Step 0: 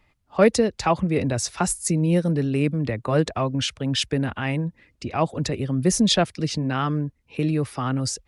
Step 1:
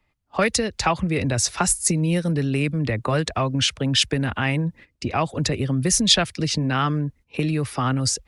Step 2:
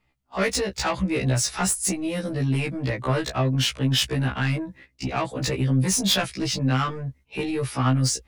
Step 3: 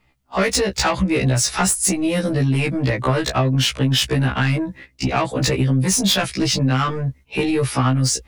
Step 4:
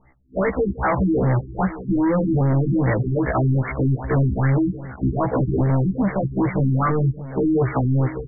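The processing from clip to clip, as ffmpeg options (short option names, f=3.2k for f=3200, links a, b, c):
-filter_complex "[0:a]agate=range=-12dB:threshold=-46dB:ratio=16:detection=peak,acrossover=split=110|1300[a][b][c];[b]acompressor=threshold=-27dB:ratio=6[d];[a][d][c]amix=inputs=3:normalize=0,volume=5.5dB"
-af "asoftclip=type=tanh:threshold=-17dB,afftfilt=real='re*1.73*eq(mod(b,3),0)':imag='im*1.73*eq(mod(b,3),0)':win_size=2048:overlap=0.75,volume=2.5dB"
-af "acompressor=threshold=-23dB:ratio=6,volume=8.5dB"
-af "volume=23.5dB,asoftclip=hard,volume=-23.5dB,aecho=1:1:162|620:0.1|0.168,afftfilt=real='re*lt(b*sr/1024,360*pow(2300/360,0.5+0.5*sin(2*PI*2.5*pts/sr)))':imag='im*lt(b*sr/1024,360*pow(2300/360,0.5+0.5*sin(2*PI*2.5*pts/sr)))':win_size=1024:overlap=0.75,volume=7dB"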